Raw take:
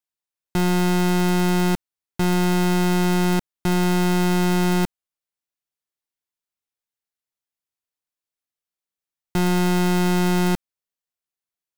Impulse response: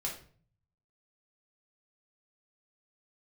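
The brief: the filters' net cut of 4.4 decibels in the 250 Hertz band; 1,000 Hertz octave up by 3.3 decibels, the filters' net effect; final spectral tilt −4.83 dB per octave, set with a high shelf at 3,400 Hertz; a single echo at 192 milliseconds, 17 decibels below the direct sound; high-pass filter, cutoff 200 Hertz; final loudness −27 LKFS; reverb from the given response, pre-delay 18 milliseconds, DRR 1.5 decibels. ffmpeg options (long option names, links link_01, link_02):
-filter_complex "[0:a]highpass=200,equalizer=frequency=250:width_type=o:gain=-3,equalizer=frequency=1000:width_type=o:gain=5,highshelf=frequency=3400:gain=-6.5,aecho=1:1:192:0.141,asplit=2[link_01][link_02];[1:a]atrim=start_sample=2205,adelay=18[link_03];[link_02][link_03]afir=irnorm=-1:irlink=0,volume=-3.5dB[link_04];[link_01][link_04]amix=inputs=2:normalize=0,volume=-6.5dB"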